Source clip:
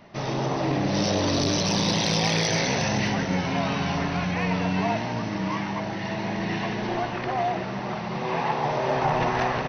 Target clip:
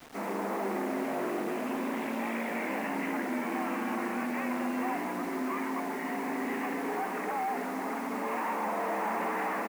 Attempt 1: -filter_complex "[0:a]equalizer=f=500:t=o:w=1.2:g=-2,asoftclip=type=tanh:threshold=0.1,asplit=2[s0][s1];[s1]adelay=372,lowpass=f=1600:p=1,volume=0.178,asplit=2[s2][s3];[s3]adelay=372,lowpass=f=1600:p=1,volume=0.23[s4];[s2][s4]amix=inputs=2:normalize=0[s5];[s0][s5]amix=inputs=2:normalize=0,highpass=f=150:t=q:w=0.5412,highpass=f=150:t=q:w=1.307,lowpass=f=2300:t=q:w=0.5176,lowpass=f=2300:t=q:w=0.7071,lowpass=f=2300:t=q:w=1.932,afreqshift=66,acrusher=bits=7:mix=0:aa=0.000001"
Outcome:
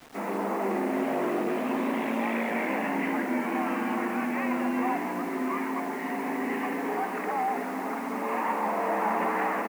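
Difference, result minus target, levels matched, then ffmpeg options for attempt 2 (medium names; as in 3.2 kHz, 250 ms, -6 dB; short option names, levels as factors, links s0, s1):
saturation: distortion -9 dB
-filter_complex "[0:a]equalizer=f=500:t=o:w=1.2:g=-2,asoftclip=type=tanh:threshold=0.0376,asplit=2[s0][s1];[s1]adelay=372,lowpass=f=1600:p=1,volume=0.178,asplit=2[s2][s3];[s3]adelay=372,lowpass=f=1600:p=1,volume=0.23[s4];[s2][s4]amix=inputs=2:normalize=0[s5];[s0][s5]amix=inputs=2:normalize=0,highpass=f=150:t=q:w=0.5412,highpass=f=150:t=q:w=1.307,lowpass=f=2300:t=q:w=0.5176,lowpass=f=2300:t=q:w=0.7071,lowpass=f=2300:t=q:w=1.932,afreqshift=66,acrusher=bits=7:mix=0:aa=0.000001"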